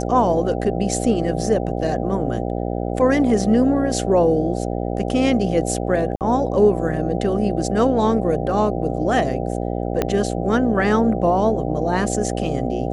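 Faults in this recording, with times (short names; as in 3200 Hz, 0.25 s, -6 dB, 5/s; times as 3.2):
buzz 60 Hz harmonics 13 -24 dBFS
6.16–6.21 gap 48 ms
10.02 pop -6 dBFS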